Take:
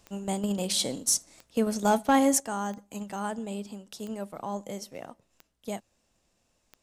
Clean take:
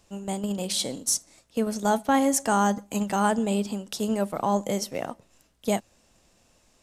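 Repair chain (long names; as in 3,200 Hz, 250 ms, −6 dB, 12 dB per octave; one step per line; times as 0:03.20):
clipped peaks rebuilt −13 dBFS
click removal
level correction +10 dB, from 0:02.40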